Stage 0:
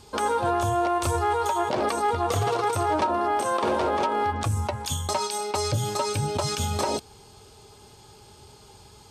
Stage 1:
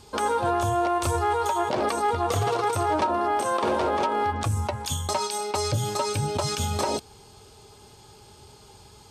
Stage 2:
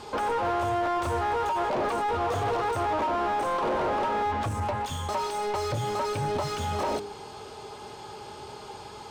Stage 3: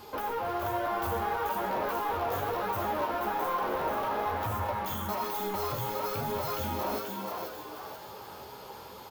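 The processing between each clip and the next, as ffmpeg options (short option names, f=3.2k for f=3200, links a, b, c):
-af anull
-filter_complex "[0:a]bandreject=f=102.1:t=h:w=4,bandreject=f=204.2:t=h:w=4,bandreject=f=306.3:t=h:w=4,bandreject=f=408.4:t=h:w=4,aeval=exprs='0.188*sin(PI/2*1.58*val(0)/0.188)':c=same,asplit=2[a][b];[b]highpass=f=720:p=1,volume=22dB,asoftclip=type=tanh:threshold=-14.5dB[c];[a][c]amix=inputs=2:normalize=0,lowpass=f=1.1k:p=1,volume=-6dB,volume=-7dB"
-filter_complex "[0:a]asplit=6[a][b][c][d][e][f];[b]adelay=483,afreqshift=110,volume=-4dB[g];[c]adelay=966,afreqshift=220,volume=-11.5dB[h];[d]adelay=1449,afreqshift=330,volume=-19.1dB[i];[e]adelay=1932,afreqshift=440,volume=-26.6dB[j];[f]adelay=2415,afreqshift=550,volume=-34.1dB[k];[a][g][h][i][j][k]amix=inputs=6:normalize=0,flanger=delay=9.4:depth=6.6:regen=-42:speed=1.1:shape=triangular,aexciter=amount=10.8:drive=8.4:freq=12k,volume=-2dB"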